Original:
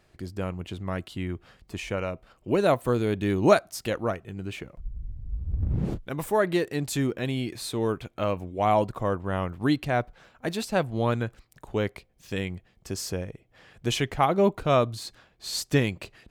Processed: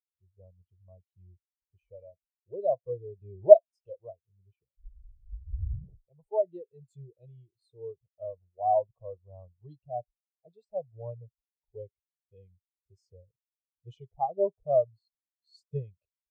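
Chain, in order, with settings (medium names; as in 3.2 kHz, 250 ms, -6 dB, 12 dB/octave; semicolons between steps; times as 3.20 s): static phaser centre 640 Hz, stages 4; spectral contrast expander 2.5:1; trim +5.5 dB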